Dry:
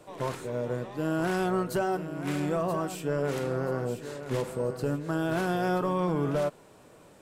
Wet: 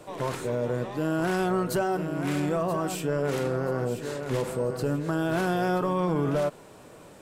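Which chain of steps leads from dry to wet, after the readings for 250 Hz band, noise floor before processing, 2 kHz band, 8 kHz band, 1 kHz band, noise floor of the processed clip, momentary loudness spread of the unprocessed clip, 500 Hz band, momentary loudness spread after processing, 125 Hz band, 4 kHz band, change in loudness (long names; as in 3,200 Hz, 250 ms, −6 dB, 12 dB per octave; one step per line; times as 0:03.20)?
+2.5 dB, −55 dBFS, +2.0 dB, +4.0 dB, +2.0 dB, −49 dBFS, 6 LU, +2.0 dB, 4 LU, +2.5 dB, +3.0 dB, +2.0 dB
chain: brickwall limiter −24 dBFS, peak gain reduction 4.5 dB
level +5.5 dB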